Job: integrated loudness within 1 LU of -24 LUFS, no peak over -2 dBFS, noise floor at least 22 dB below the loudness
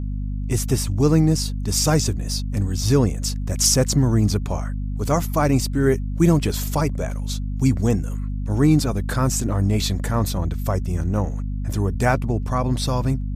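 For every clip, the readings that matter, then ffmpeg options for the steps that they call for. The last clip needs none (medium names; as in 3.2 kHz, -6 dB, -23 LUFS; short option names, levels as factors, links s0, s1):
hum 50 Hz; highest harmonic 250 Hz; hum level -23 dBFS; loudness -21.5 LUFS; peak level -4.0 dBFS; loudness target -24.0 LUFS
-> -af "bandreject=f=50:t=h:w=6,bandreject=f=100:t=h:w=6,bandreject=f=150:t=h:w=6,bandreject=f=200:t=h:w=6,bandreject=f=250:t=h:w=6"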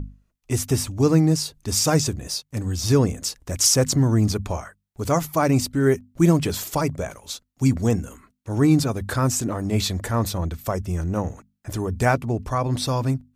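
hum not found; loudness -22.5 LUFS; peak level -5.0 dBFS; loudness target -24.0 LUFS
-> -af "volume=0.841"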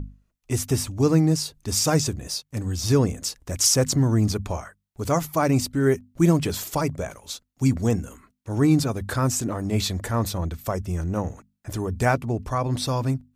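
loudness -24.0 LUFS; peak level -6.5 dBFS; noise floor -73 dBFS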